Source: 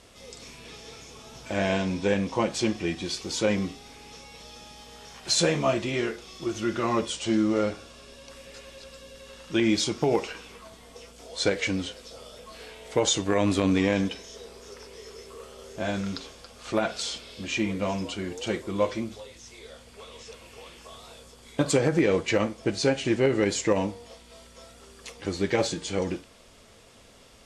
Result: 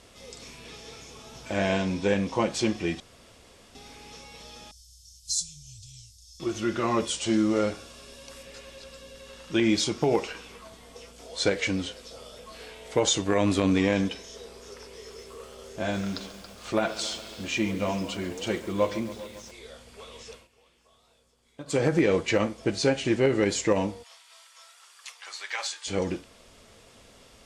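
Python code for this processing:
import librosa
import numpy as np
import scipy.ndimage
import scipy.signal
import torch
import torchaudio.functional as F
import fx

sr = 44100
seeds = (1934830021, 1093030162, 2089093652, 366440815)

y = fx.cheby2_bandstop(x, sr, low_hz=270.0, high_hz=1800.0, order=4, stop_db=60, at=(4.71, 6.4))
y = fx.high_shelf(y, sr, hz=6800.0, db=7.0, at=(7.0, 8.43))
y = fx.echo_crushed(y, sr, ms=138, feedback_pct=80, bits=7, wet_db=-15.0, at=(14.79, 19.51))
y = fx.highpass(y, sr, hz=940.0, slope=24, at=(24.02, 25.86), fade=0.02)
y = fx.edit(y, sr, fx.room_tone_fill(start_s=3.0, length_s=0.75),
    fx.fade_down_up(start_s=20.32, length_s=1.5, db=-17.0, fade_s=0.16), tone=tone)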